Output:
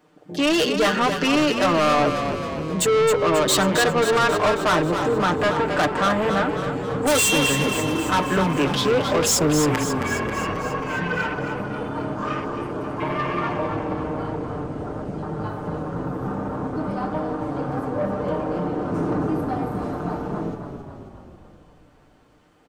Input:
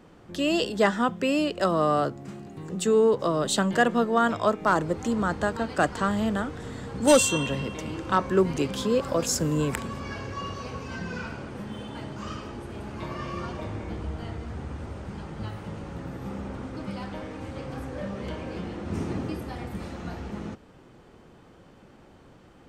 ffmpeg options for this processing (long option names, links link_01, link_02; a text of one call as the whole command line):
ffmpeg -i in.wav -filter_complex "[0:a]lowpass=frequency=3000:poles=1,aemphasis=mode=production:type=bsi,afwtdn=0.01,aecho=1:1:6.6:0.77,asplit=2[link_01][link_02];[link_02]alimiter=limit=-12dB:level=0:latency=1:release=454,volume=-2dB[link_03];[link_01][link_03]amix=inputs=2:normalize=0,asoftclip=type=tanh:threshold=-23dB,asplit=9[link_04][link_05][link_06][link_07][link_08][link_09][link_10][link_11][link_12];[link_05]adelay=269,afreqshift=-30,volume=-7.5dB[link_13];[link_06]adelay=538,afreqshift=-60,volume=-12.1dB[link_14];[link_07]adelay=807,afreqshift=-90,volume=-16.7dB[link_15];[link_08]adelay=1076,afreqshift=-120,volume=-21.2dB[link_16];[link_09]adelay=1345,afreqshift=-150,volume=-25.8dB[link_17];[link_10]adelay=1614,afreqshift=-180,volume=-30.4dB[link_18];[link_11]adelay=1883,afreqshift=-210,volume=-35dB[link_19];[link_12]adelay=2152,afreqshift=-240,volume=-39.6dB[link_20];[link_04][link_13][link_14][link_15][link_16][link_17][link_18][link_19][link_20]amix=inputs=9:normalize=0,volume=6.5dB" out.wav